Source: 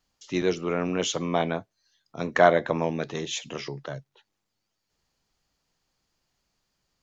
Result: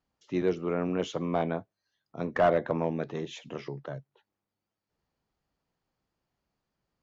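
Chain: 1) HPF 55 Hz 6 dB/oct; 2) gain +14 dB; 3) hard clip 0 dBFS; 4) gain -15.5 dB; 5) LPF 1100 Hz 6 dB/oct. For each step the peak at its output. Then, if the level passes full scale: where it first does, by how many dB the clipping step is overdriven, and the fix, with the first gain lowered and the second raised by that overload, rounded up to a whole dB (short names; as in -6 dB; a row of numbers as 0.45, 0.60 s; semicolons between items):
-5.0, +9.0, 0.0, -15.5, -15.5 dBFS; step 2, 9.0 dB; step 2 +5 dB, step 4 -6.5 dB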